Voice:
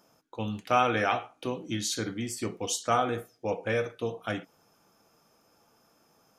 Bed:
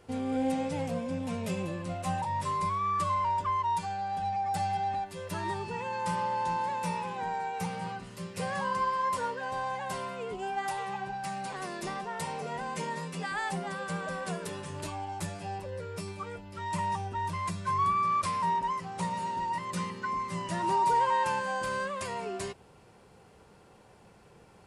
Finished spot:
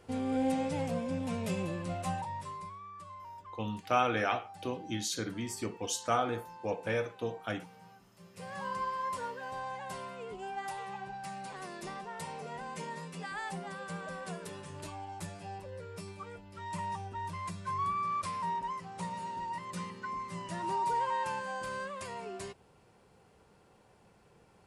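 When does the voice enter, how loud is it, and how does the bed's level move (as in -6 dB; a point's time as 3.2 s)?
3.20 s, -4.0 dB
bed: 2 s -1 dB
2.91 s -19 dB
8.11 s -19 dB
8.67 s -6 dB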